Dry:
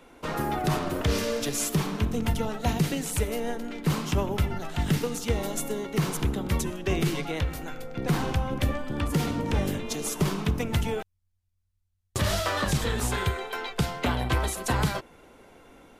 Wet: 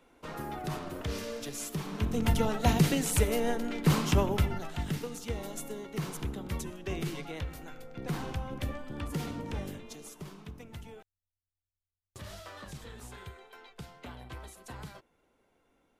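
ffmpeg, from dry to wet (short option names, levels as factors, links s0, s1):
-af "volume=1.12,afade=t=in:st=1.83:d=0.57:silence=0.281838,afade=t=out:st=4.11:d=0.79:silence=0.316228,afade=t=out:st=9.35:d=0.86:silence=0.316228"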